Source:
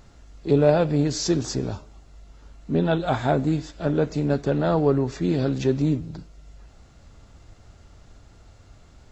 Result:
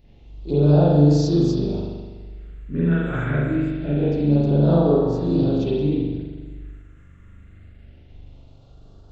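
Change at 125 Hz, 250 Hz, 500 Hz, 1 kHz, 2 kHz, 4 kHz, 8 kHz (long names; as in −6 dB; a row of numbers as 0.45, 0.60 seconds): +6.5 dB, +4.5 dB, +1.0 dB, −2.5 dB, +0.5 dB, −3.5 dB, can't be measured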